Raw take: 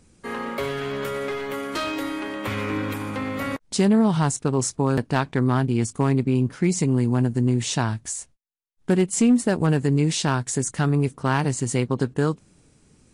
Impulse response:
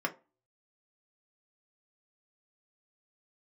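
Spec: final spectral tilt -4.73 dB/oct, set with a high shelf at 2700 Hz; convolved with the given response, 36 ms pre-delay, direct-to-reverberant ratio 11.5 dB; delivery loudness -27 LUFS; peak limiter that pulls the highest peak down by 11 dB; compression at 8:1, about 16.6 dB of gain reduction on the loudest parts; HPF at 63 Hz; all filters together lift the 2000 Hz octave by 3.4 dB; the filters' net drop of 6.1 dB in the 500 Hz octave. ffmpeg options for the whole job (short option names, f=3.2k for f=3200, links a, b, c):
-filter_complex "[0:a]highpass=63,equalizer=f=500:t=o:g=-8.5,equalizer=f=2k:t=o:g=6.5,highshelf=f=2.7k:g=-4,acompressor=threshold=-34dB:ratio=8,alimiter=level_in=7dB:limit=-24dB:level=0:latency=1,volume=-7dB,asplit=2[a][b];[1:a]atrim=start_sample=2205,adelay=36[c];[b][c]afir=irnorm=-1:irlink=0,volume=-18dB[d];[a][d]amix=inputs=2:normalize=0,volume=12.5dB"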